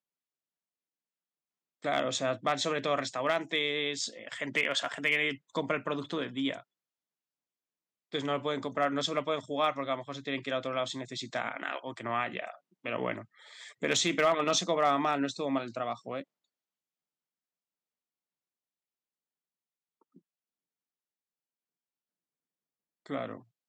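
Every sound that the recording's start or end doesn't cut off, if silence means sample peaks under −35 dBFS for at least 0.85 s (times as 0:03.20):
0:01.84–0:06.58
0:08.14–0:16.21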